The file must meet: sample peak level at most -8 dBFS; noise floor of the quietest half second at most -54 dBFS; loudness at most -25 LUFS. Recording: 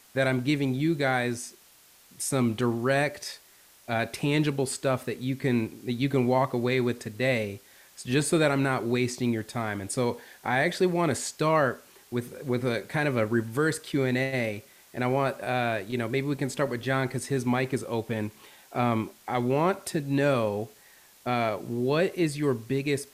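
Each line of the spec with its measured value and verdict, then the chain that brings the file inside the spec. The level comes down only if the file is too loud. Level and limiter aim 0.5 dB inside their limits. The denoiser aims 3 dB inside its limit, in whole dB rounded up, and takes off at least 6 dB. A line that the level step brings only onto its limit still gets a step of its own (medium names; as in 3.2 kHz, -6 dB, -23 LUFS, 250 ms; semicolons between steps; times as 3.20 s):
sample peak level -11.5 dBFS: pass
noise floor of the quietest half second -57 dBFS: pass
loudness -27.5 LUFS: pass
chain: none needed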